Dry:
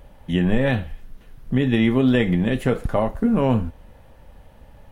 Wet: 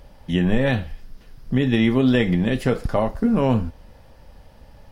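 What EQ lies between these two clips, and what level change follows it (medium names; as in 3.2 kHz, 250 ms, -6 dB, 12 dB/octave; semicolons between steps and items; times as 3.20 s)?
peaking EQ 5 kHz +12 dB 0.43 oct; 0.0 dB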